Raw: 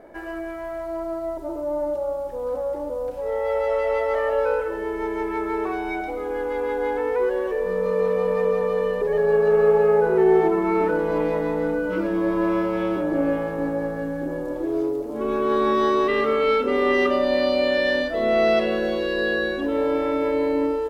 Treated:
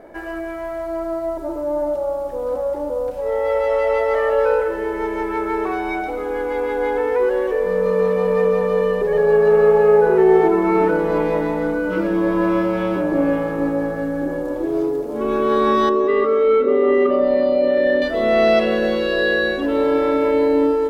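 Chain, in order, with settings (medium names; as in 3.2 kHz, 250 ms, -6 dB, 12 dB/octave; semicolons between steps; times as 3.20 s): 15.89–18.02 s: resonances exaggerated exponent 1.5; plate-style reverb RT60 4.4 s, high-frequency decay 0.9×, pre-delay 0 ms, DRR 13 dB; trim +4 dB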